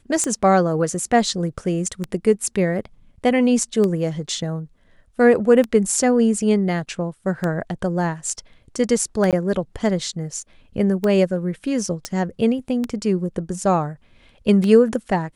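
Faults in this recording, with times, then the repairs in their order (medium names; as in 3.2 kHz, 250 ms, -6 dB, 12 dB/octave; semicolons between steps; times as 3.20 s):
tick 33 1/3 rpm -11 dBFS
9.31–9.33 s: dropout 17 ms
12.05 s: pop -11 dBFS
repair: de-click; interpolate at 9.31 s, 17 ms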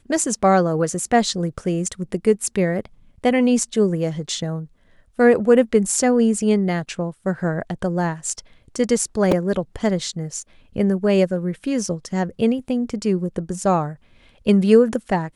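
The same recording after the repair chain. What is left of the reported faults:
nothing left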